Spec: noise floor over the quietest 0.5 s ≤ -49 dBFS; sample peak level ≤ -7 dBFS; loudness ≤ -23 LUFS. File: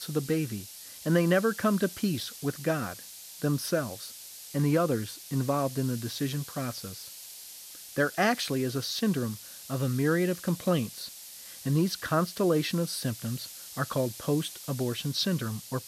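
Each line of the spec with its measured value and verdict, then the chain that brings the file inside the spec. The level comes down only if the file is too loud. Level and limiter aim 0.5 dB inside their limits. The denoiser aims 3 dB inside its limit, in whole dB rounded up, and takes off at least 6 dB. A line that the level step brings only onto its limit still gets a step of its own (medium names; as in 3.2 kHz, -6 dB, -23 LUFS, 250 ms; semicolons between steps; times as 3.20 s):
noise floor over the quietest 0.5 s -46 dBFS: fail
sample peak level -12.0 dBFS: pass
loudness -29.5 LUFS: pass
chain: noise reduction 6 dB, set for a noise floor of -46 dBFS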